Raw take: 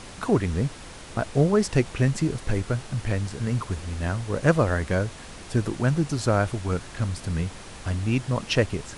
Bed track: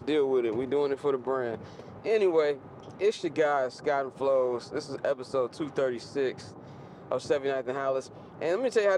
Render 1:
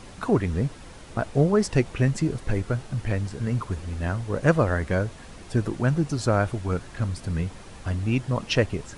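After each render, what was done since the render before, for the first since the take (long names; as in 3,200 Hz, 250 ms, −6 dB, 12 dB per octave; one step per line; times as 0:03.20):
broadband denoise 6 dB, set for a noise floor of −42 dBFS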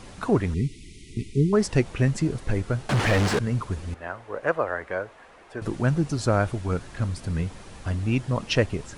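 0:00.54–0:01.53: linear-phase brick-wall band-stop 440–1,900 Hz
0:02.89–0:03.39: mid-hump overdrive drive 36 dB, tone 2,100 Hz, clips at −13 dBFS
0:03.94–0:05.62: three-way crossover with the lows and the highs turned down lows −20 dB, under 410 Hz, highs −15 dB, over 2,500 Hz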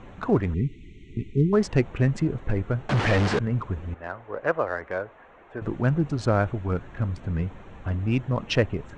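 adaptive Wiener filter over 9 samples
Bessel low-pass filter 5,500 Hz, order 8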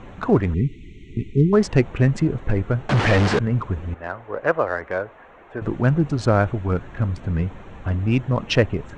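level +4.5 dB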